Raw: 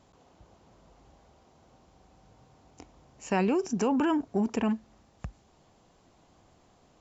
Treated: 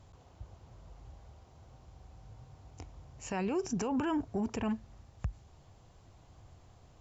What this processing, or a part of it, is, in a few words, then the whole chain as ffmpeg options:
car stereo with a boomy subwoofer: -af "lowshelf=frequency=150:width_type=q:width=1.5:gain=10,alimiter=limit=-24dB:level=0:latency=1:release=84,volume=-1dB"

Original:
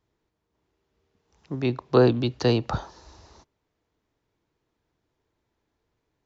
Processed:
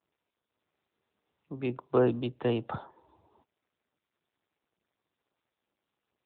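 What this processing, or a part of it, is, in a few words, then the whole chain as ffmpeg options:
mobile call with aggressive noise cancelling: -af "highpass=frequency=140:poles=1,afftdn=noise_reduction=16:noise_floor=-50,volume=-5.5dB" -ar 8000 -c:a libopencore_amrnb -b:a 10200

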